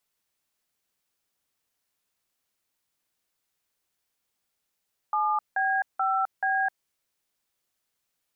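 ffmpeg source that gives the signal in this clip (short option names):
-f lavfi -i "aevalsrc='0.0562*clip(min(mod(t,0.432),0.259-mod(t,0.432))/0.002,0,1)*(eq(floor(t/0.432),0)*(sin(2*PI*852*mod(t,0.432))+sin(2*PI*1209*mod(t,0.432)))+eq(floor(t/0.432),1)*(sin(2*PI*770*mod(t,0.432))+sin(2*PI*1633*mod(t,0.432)))+eq(floor(t/0.432),2)*(sin(2*PI*770*mod(t,0.432))+sin(2*PI*1336*mod(t,0.432)))+eq(floor(t/0.432),3)*(sin(2*PI*770*mod(t,0.432))+sin(2*PI*1633*mod(t,0.432))))':d=1.728:s=44100"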